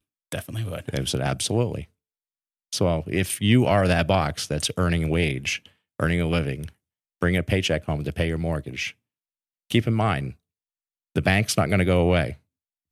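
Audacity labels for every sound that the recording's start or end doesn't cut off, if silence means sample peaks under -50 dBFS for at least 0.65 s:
2.720000	8.920000	sound
9.700000	10.360000	sound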